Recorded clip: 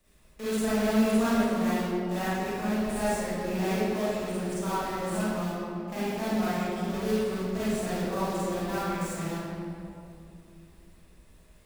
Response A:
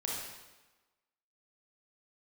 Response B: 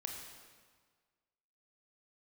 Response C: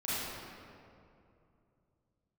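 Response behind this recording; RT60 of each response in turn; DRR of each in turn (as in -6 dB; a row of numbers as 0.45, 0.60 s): C; 1.2, 1.6, 2.6 s; -4.0, 1.5, -12.0 dB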